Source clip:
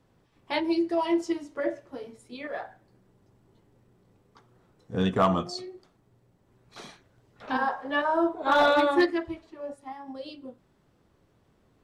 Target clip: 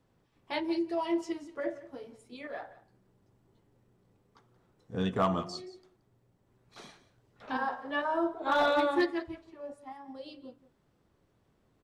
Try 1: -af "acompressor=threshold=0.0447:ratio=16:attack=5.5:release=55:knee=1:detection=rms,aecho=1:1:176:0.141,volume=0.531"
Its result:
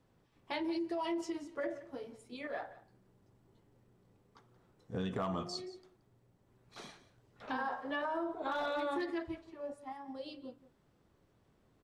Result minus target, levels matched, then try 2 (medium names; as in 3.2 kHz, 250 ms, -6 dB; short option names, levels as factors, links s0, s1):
compression: peak gain reduction +11.5 dB
-af "aecho=1:1:176:0.141,volume=0.531"